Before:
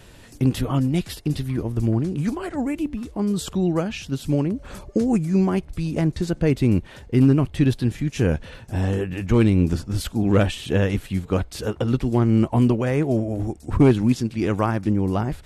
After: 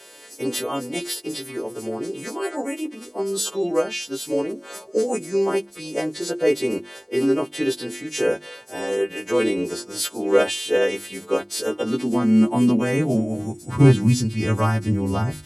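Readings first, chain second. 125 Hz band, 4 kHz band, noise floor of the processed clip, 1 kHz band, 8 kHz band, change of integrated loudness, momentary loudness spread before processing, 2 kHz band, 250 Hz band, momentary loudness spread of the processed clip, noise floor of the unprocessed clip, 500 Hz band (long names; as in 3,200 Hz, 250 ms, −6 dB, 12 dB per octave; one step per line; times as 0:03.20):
−4.5 dB, +6.0 dB, −45 dBFS, +1.0 dB, +9.0 dB, −1.0 dB, 9 LU, +3.5 dB, −2.5 dB, 12 LU, −46 dBFS, +3.0 dB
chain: every partial snapped to a pitch grid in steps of 2 semitones
high-pass filter sweep 410 Hz → 80 Hz, 0:11.17–0:14.85
mains-hum notches 50/100/150/200/250/300/350 Hz
level −1 dB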